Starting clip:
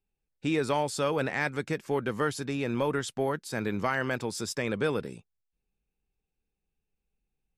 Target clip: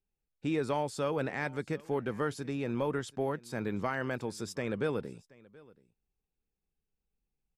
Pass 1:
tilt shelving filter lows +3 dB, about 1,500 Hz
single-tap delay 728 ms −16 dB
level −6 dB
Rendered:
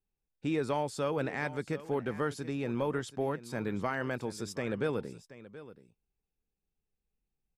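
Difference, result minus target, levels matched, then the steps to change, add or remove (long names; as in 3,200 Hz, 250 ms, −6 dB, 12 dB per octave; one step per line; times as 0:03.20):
echo-to-direct +7.5 dB
change: single-tap delay 728 ms −23.5 dB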